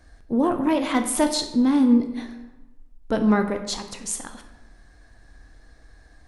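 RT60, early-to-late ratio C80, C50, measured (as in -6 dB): 1.0 s, 11.5 dB, 9.5 dB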